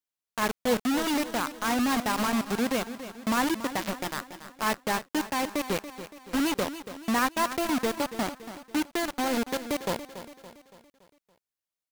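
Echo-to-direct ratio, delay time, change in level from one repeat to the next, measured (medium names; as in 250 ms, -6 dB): -11.5 dB, 283 ms, -6.0 dB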